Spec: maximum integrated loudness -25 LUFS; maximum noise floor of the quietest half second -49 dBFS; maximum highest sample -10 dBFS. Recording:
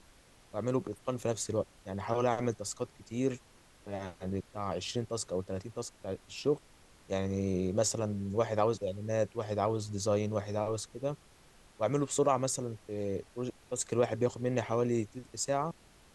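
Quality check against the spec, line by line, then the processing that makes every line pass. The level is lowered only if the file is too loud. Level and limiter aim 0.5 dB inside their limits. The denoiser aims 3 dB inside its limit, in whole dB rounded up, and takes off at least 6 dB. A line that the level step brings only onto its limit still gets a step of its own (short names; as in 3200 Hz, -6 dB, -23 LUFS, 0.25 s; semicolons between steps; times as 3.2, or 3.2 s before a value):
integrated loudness -34.0 LUFS: OK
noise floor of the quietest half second -60 dBFS: OK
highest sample -15.5 dBFS: OK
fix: none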